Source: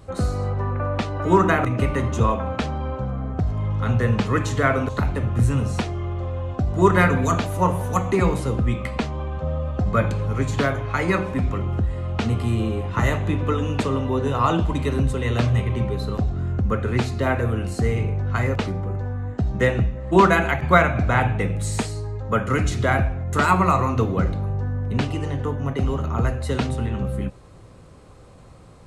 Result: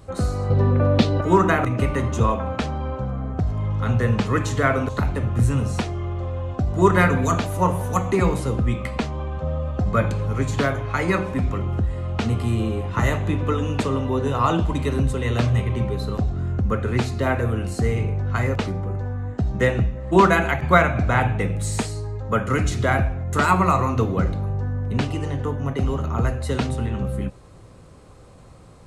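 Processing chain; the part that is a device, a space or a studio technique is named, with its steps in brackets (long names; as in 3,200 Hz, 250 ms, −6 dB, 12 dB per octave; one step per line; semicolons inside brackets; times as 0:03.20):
0:00.50–0:01.21: octave-band graphic EQ 125/250/500/1,000/4,000 Hz +9/+8/+7/−3/+11 dB
exciter from parts (in parallel at −12.5 dB: high-pass filter 3,900 Hz 12 dB per octave + soft clipping −30.5 dBFS, distortion −14 dB)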